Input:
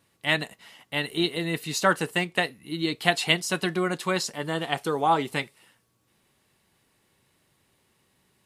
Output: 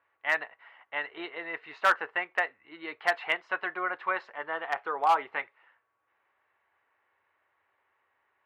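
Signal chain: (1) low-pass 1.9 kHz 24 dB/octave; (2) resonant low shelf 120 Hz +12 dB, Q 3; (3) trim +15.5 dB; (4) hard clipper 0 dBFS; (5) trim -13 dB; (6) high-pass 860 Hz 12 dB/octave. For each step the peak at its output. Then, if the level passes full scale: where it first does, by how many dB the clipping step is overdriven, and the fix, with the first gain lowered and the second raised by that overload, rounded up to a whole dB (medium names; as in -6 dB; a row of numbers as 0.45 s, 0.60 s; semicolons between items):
-7.0 dBFS, -8.0 dBFS, +7.5 dBFS, 0.0 dBFS, -13.0 dBFS, -10.0 dBFS; step 3, 7.5 dB; step 3 +7.5 dB, step 5 -5 dB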